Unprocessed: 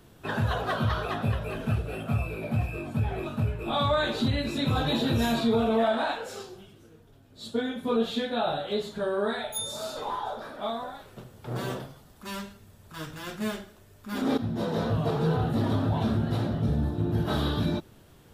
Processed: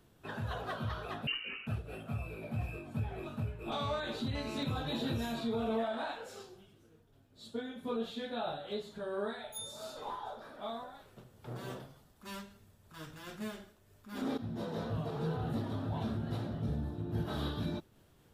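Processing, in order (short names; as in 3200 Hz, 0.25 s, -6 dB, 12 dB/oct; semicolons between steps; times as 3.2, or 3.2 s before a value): 1.27–1.67 inverted band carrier 2900 Hz; 3.72–4.63 GSM buzz -35 dBFS; noise-modulated level, depth 55%; gain -7 dB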